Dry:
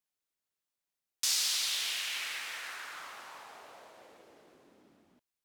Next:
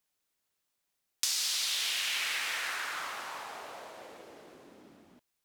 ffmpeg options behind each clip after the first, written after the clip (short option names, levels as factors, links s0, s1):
-af "acompressor=threshold=0.0158:ratio=6,volume=2.37"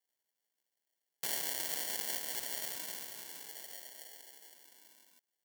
-af "acrusher=samples=35:mix=1:aa=0.000001,aderivative,volume=2.24"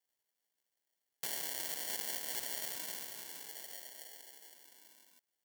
-af "alimiter=limit=0.158:level=0:latency=1:release=224"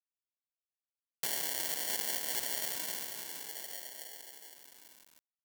-af "aeval=exprs='val(0)*gte(abs(val(0)),0.00422)':c=same,volume=1.68"